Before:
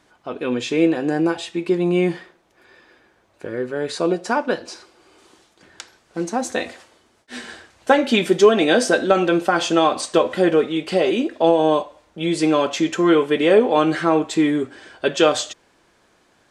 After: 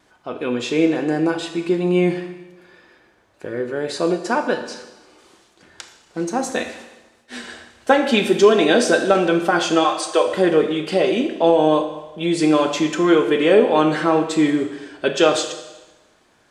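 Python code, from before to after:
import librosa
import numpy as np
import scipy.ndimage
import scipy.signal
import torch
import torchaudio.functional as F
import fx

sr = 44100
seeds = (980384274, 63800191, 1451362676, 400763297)

y = fx.highpass(x, sr, hz=fx.line((9.83, 700.0), (10.26, 330.0)), slope=24, at=(9.83, 10.26), fade=0.02)
y = fx.wow_flutter(y, sr, seeds[0], rate_hz=2.1, depth_cents=28.0)
y = fx.rev_schroeder(y, sr, rt60_s=1.1, comb_ms=26, drr_db=7.5)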